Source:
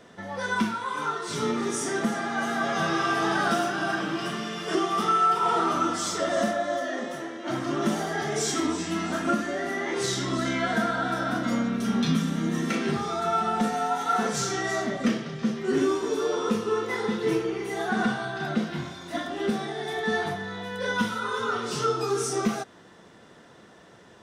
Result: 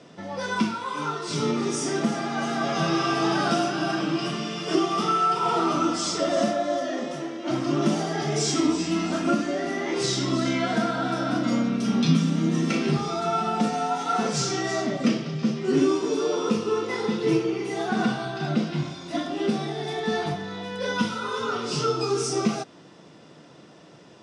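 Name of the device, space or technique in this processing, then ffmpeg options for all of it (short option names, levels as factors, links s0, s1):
car door speaker: -af "highpass=90,equalizer=f=150:t=q:w=4:g=9,equalizer=f=300:t=q:w=4:g=7,equalizer=f=590:t=q:w=4:g=3,equalizer=f=1700:t=q:w=4:g=-6,equalizer=f=2600:t=q:w=4:g=5,equalizer=f=5000:t=q:w=4:g=7,lowpass=f=9200:w=0.5412,lowpass=f=9200:w=1.3066"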